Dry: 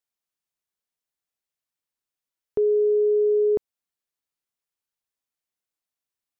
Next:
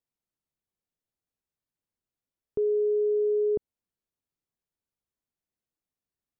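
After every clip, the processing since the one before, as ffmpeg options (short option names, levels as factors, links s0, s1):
-af "tiltshelf=f=630:g=8,alimiter=limit=0.0841:level=0:latency=1"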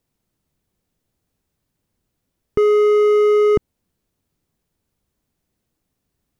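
-af "acontrast=82,volume=16.8,asoftclip=hard,volume=0.0596,lowshelf=f=420:g=11,volume=2.11"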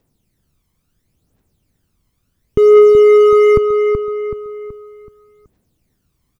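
-filter_complex "[0:a]aphaser=in_gain=1:out_gain=1:delay=1:decay=0.63:speed=0.72:type=triangular,asplit=2[s0][s1];[s1]adelay=377,lowpass=f=3100:p=1,volume=0.422,asplit=2[s2][s3];[s3]adelay=377,lowpass=f=3100:p=1,volume=0.44,asplit=2[s4][s5];[s5]adelay=377,lowpass=f=3100:p=1,volume=0.44,asplit=2[s6][s7];[s7]adelay=377,lowpass=f=3100:p=1,volume=0.44,asplit=2[s8][s9];[s9]adelay=377,lowpass=f=3100:p=1,volume=0.44[s10];[s0][s2][s4][s6][s8][s10]amix=inputs=6:normalize=0,asplit=2[s11][s12];[s12]alimiter=limit=0.299:level=0:latency=1:release=199,volume=1.26[s13];[s11][s13]amix=inputs=2:normalize=0,volume=0.708"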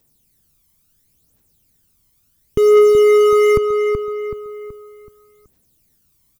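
-af "crystalizer=i=3.5:c=0,volume=0.668"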